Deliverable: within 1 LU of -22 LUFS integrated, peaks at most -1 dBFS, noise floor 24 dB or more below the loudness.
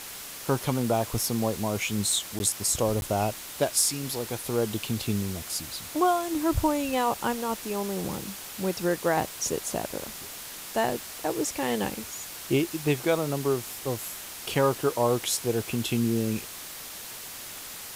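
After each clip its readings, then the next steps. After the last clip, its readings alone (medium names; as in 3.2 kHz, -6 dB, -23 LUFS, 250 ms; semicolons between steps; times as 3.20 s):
dropouts 2; longest dropout 11 ms; noise floor -41 dBFS; noise floor target -52 dBFS; loudness -28.0 LUFS; peak level -10.5 dBFS; loudness target -22.0 LUFS
-> interpolate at 2.39/3.01 s, 11 ms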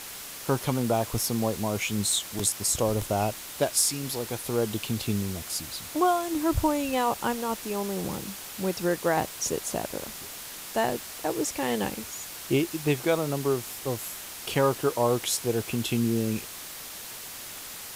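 dropouts 0; noise floor -41 dBFS; noise floor target -52 dBFS
-> noise reduction 11 dB, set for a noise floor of -41 dBFS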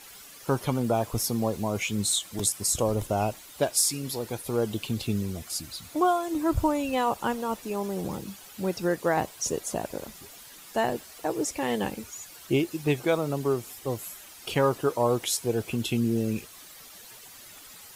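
noise floor -48 dBFS; noise floor target -52 dBFS
-> noise reduction 6 dB, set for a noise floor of -48 dBFS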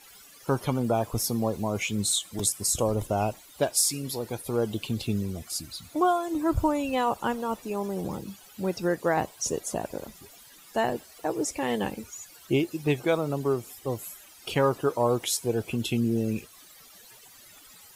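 noise floor -52 dBFS; loudness -28.0 LUFS; peak level -10.5 dBFS; loudness target -22.0 LUFS
-> trim +6 dB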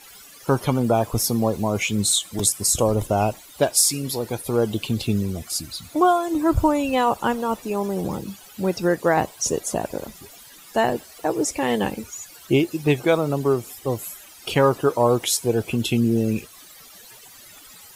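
loudness -22.0 LUFS; peak level -4.5 dBFS; noise floor -46 dBFS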